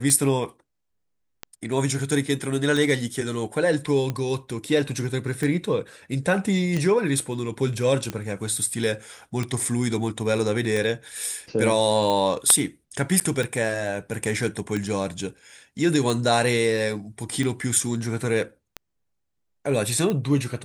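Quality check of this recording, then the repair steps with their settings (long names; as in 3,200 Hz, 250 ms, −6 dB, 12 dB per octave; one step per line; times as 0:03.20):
scratch tick 45 rpm −14 dBFS
0:13.20–0:13.21: drop-out 8.4 ms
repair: click removal
repair the gap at 0:13.20, 8.4 ms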